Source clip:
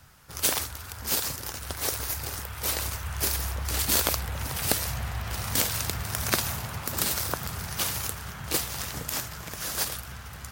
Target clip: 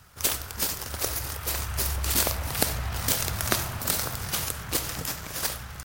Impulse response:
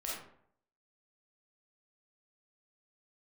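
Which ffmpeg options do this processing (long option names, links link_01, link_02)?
-filter_complex "[0:a]atempo=1.8,aeval=exprs='0.708*(cos(1*acos(clip(val(0)/0.708,-1,1)))-cos(1*PI/2))+0.02*(cos(6*acos(clip(val(0)/0.708,-1,1)))-cos(6*PI/2))':channel_layout=same,asplit=2[link_01][link_02];[1:a]atrim=start_sample=2205[link_03];[link_02][link_03]afir=irnorm=-1:irlink=0,volume=-9.5dB[link_04];[link_01][link_04]amix=inputs=2:normalize=0"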